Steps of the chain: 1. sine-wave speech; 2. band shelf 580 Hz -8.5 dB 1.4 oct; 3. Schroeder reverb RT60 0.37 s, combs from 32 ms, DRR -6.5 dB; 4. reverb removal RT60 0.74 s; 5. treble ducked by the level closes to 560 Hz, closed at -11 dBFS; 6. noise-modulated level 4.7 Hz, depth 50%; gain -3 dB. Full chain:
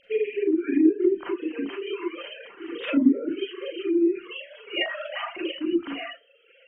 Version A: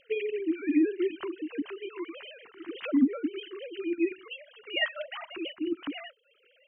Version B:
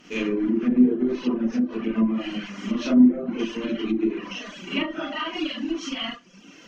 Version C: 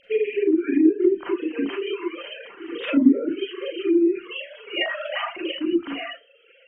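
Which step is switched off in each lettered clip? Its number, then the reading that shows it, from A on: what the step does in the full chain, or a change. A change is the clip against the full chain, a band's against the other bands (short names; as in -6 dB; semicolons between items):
3, 2 kHz band +4.5 dB; 1, 500 Hz band -7.0 dB; 6, loudness change +3.0 LU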